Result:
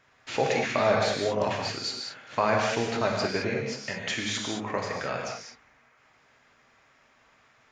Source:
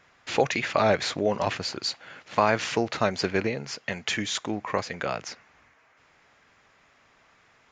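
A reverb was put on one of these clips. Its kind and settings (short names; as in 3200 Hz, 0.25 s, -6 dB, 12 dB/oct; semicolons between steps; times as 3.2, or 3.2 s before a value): non-linear reverb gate 0.24 s flat, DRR -1 dB; gain -4.5 dB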